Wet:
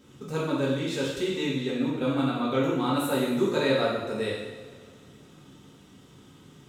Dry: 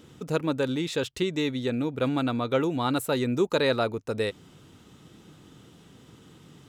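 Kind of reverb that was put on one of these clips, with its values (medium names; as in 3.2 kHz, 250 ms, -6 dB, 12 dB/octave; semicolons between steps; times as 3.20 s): two-slope reverb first 0.96 s, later 3 s, DRR -6.5 dB; trim -7.5 dB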